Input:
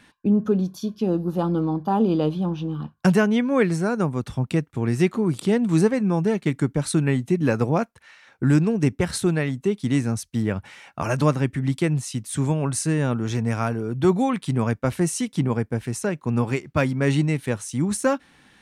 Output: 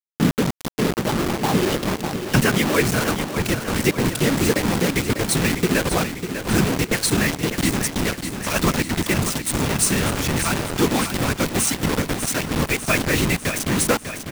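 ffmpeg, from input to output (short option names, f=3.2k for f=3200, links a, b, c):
-filter_complex "[0:a]firequalizer=gain_entry='entry(730,0);entry(2200,13);entry(5500,14)':delay=0.05:min_phase=1,acrossover=split=1900[a][b];[a]acontrast=38[c];[c][b]amix=inputs=2:normalize=0,atempo=1.3,afftfilt=real='hypot(re,im)*cos(2*PI*random(0))':imag='hypot(re,im)*sin(2*PI*random(1))':win_size=512:overlap=0.75,acrusher=bits=3:mix=0:aa=0.000001,aecho=1:1:597|1194|1791|2388|2985|3582|4179:0.355|0.206|0.119|0.0692|0.0402|0.0233|0.0135"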